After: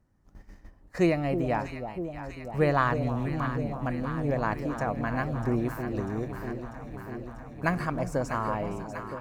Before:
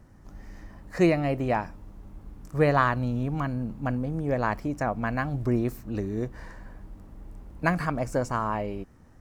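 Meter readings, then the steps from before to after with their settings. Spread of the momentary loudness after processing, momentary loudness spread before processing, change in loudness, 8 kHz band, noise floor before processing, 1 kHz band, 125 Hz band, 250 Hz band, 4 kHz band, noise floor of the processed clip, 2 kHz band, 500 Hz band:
13 LU, 23 LU, -2.5 dB, n/a, -52 dBFS, -1.5 dB, -1.5 dB, -1.5 dB, -1.5 dB, -57 dBFS, -1.5 dB, -1.5 dB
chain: gate -41 dBFS, range -13 dB; on a send: echo with dull and thin repeats by turns 0.322 s, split 880 Hz, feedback 84%, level -8 dB; on the sum: gain -2.5 dB

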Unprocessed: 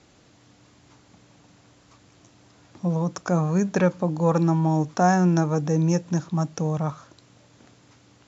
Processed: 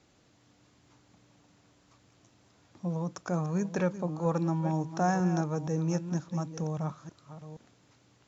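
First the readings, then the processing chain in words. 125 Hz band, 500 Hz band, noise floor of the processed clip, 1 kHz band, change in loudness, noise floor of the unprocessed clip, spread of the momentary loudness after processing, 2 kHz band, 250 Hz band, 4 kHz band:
-8.0 dB, -8.0 dB, -65 dBFS, -8.0 dB, -8.0 dB, -57 dBFS, 19 LU, -8.5 dB, -8.0 dB, -8.5 dB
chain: reverse delay 0.473 s, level -12 dB; gain -8.5 dB

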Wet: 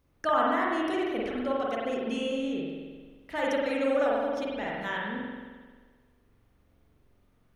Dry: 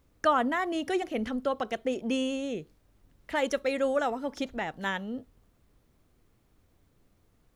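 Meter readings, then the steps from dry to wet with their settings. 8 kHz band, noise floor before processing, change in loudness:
n/a, -68 dBFS, +1.0 dB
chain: notch 7300 Hz, Q 8.8; spring tank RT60 1.5 s, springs 44 ms, chirp 75 ms, DRR -4.5 dB; gain -5 dB

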